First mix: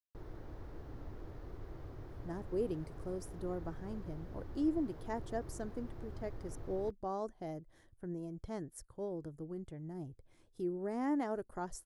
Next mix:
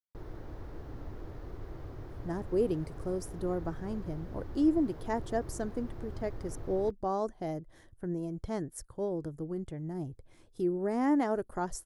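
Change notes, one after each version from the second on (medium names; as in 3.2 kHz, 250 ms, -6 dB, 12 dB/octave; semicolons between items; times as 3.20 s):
speech +7.0 dB; background +4.5 dB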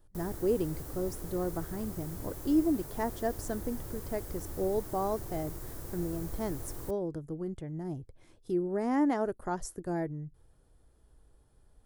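speech: entry -2.10 s; background: remove distance through air 280 m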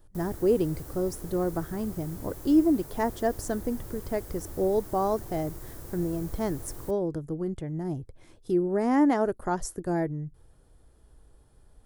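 speech +5.5 dB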